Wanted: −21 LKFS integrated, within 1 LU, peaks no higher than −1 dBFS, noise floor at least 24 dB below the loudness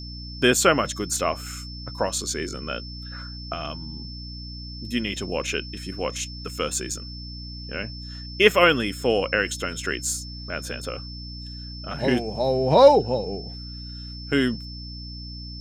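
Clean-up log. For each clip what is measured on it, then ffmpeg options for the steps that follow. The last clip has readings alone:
mains hum 60 Hz; hum harmonics up to 300 Hz; level of the hum −35 dBFS; interfering tone 5,300 Hz; level of the tone −39 dBFS; integrated loudness −24.0 LKFS; sample peak −2.0 dBFS; target loudness −21.0 LKFS
→ -af "bandreject=frequency=60:width_type=h:width=4,bandreject=frequency=120:width_type=h:width=4,bandreject=frequency=180:width_type=h:width=4,bandreject=frequency=240:width_type=h:width=4,bandreject=frequency=300:width_type=h:width=4"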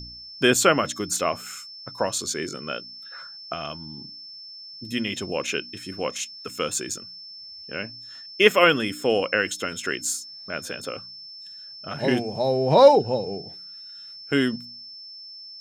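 mains hum none found; interfering tone 5,300 Hz; level of the tone −39 dBFS
→ -af "bandreject=frequency=5300:width=30"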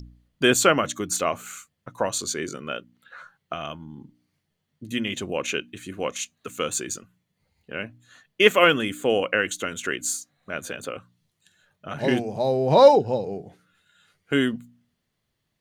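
interfering tone none found; integrated loudness −23.5 LKFS; sample peak −2.0 dBFS; target loudness −21.0 LKFS
→ -af "volume=2.5dB,alimiter=limit=-1dB:level=0:latency=1"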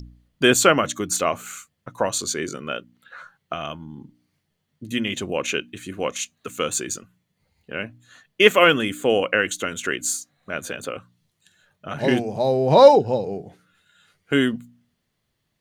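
integrated loudness −21.0 LKFS; sample peak −1.0 dBFS; background noise floor −75 dBFS

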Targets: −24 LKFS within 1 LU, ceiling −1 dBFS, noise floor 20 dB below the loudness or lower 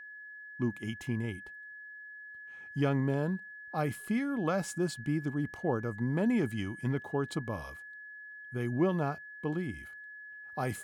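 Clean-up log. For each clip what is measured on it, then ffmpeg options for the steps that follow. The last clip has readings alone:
interfering tone 1,700 Hz; level of the tone −45 dBFS; integrated loudness −33.5 LKFS; sample peak −17.5 dBFS; target loudness −24.0 LKFS
→ -af "bandreject=frequency=1700:width=30"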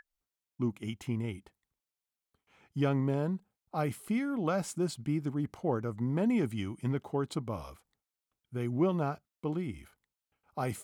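interfering tone none found; integrated loudness −34.0 LKFS; sample peak −17.5 dBFS; target loudness −24.0 LKFS
→ -af "volume=10dB"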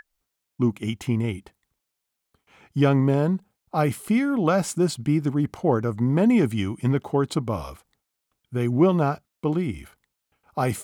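integrated loudness −24.0 LKFS; sample peak −7.5 dBFS; background noise floor −81 dBFS

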